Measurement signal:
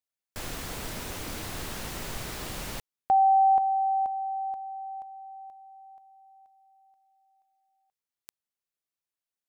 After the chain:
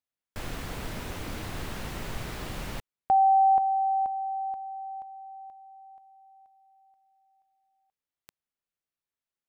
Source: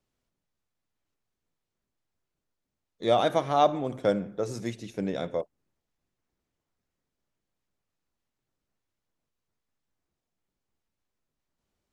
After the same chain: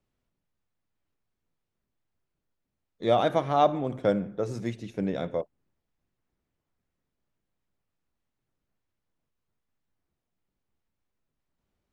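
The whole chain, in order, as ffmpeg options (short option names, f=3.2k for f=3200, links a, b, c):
-af "bass=f=250:g=3,treble=f=4k:g=-7"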